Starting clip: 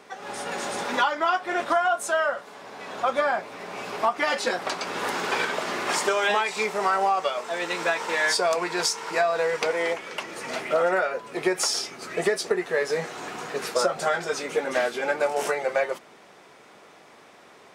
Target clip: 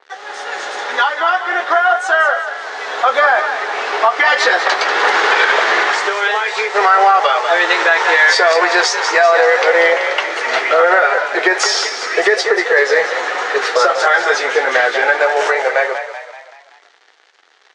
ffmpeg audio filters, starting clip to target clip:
-filter_complex "[0:a]asettb=1/sr,asplit=3[a][b][c];[a]atrim=end=5.834[d];[b]atrim=start=5.83:end=6.75,asetpts=PTS-STARTPTS,afade=t=in:d=0.004:c=qsin,afade=t=out:st=0.916:d=0.004:c=qsin,acompressor=threshold=-29dB:ratio=6[e];[c]atrim=start=6.746[f];[d][e]acrossfade=d=0.004:c1=hsin:c2=qsin[g];[g][f]acrossfade=d=0.004:c1=qsin:c2=hsin,acrusher=bits=6:mix=0:aa=0.5,dynaudnorm=f=380:g=13:m=11.5dB,highpass=f=450:w=0.5412,highpass=f=450:w=1.3066,equalizer=f=590:t=q:w=4:g=-7,equalizer=f=1k:t=q:w=4:g=-4,equalizer=f=1.8k:t=q:w=4:g=4,equalizer=f=2.5k:t=q:w=4:g=-5,equalizer=f=5.1k:t=q:w=4:g=-3,lowpass=f=6k:w=0.5412,lowpass=f=6k:w=1.3066,asplit=2[h][i];[i]adelay=12,volume=-11.5dB[j];[h][j]amix=inputs=2:normalize=0,asplit=2[k][l];[l]asplit=5[m][n][o][p][q];[m]adelay=191,afreqshift=37,volume=-10dB[r];[n]adelay=382,afreqshift=74,volume=-16.4dB[s];[o]adelay=573,afreqshift=111,volume=-22.8dB[t];[p]adelay=764,afreqshift=148,volume=-29.1dB[u];[q]adelay=955,afreqshift=185,volume=-35.5dB[v];[r][s][t][u][v]amix=inputs=5:normalize=0[w];[k][w]amix=inputs=2:normalize=0,alimiter=level_in=9.5dB:limit=-1dB:release=50:level=0:latency=1,adynamicequalizer=threshold=0.0447:dfrequency=3700:dqfactor=0.7:tfrequency=3700:tqfactor=0.7:attack=5:release=100:ratio=0.375:range=2:mode=cutabove:tftype=highshelf,volume=-1dB"

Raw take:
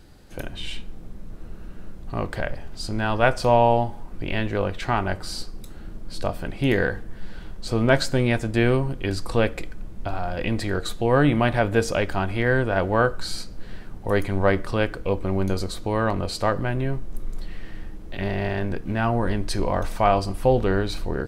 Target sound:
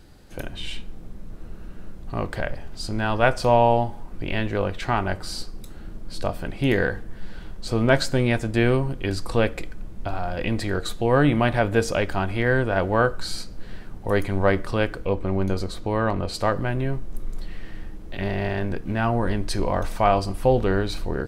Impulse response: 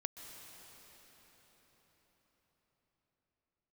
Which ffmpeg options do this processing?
-filter_complex "[0:a]asettb=1/sr,asplit=3[a][b][c];[a]atrim=end=15.054[d];[b]atrim=start=15.05:end=16.34,asetpts=PTS-STARTPTS,afade=t=in:d=0.004:c=qsin,afade=t=out:st=1.286:d=0.004:c=qsin,highshelf=f=5.1k:g=-7[e];[c]atrim=start=16.336[f];[d][e]acrossfade=d=0.004:c1=hsin:c2=qsin[g];[g][f]acrossfade=d=0.004:c1=qsin:c2=hsin"

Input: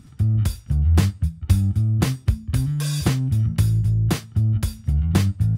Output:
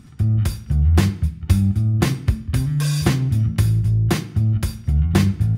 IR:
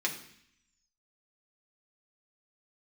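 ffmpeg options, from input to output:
-filter_complex "[0:a]asplit=2[a][b];[1:a]atrim=start_sample=2205,highshelf=f=4.6k:g=-7.5[c];[b][c]afir=irnorm=-1:irlink=0,volume=-8dB[d];[a][d]amix=inputs=2:normalize=0"

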